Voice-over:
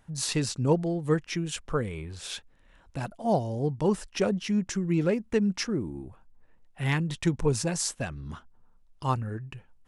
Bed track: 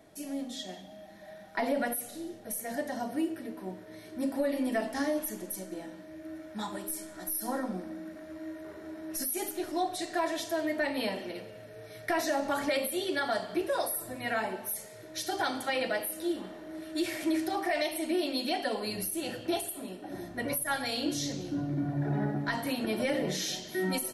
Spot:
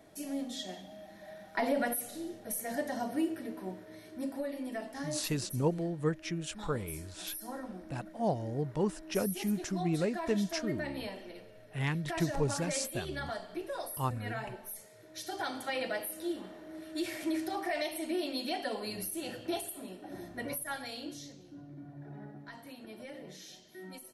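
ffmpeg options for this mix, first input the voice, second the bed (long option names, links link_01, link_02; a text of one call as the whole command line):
ffmpeg -i stem1.wav -i stem2.wav -filter_complex "[0:a]adelay=4950,volume=-6dB[link_01];[1:a]volume=4dB,afade=type=out:start_time=3.59:duration=0.94:silence=0.398107,afade=type=in:start_time=14.97:duration=0.8:silence=0.595662,afade=type=out:start_time=20.3:duration=1.06:silence=0.237137[link_02];[link_01][link_02]amix=inputs=2:normalize=0" out.wav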